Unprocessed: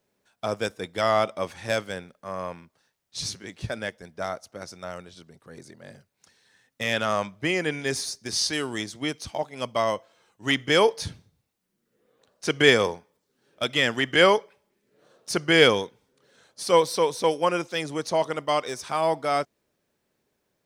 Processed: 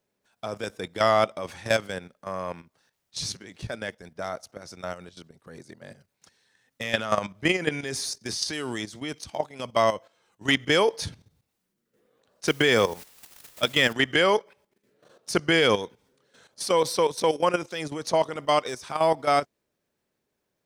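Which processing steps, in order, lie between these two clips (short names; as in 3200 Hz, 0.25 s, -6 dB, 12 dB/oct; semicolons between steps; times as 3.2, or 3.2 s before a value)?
12.47–13.93 requantised 8-bit, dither triangular; level quantiser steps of 12 dB; gain +4.5 dB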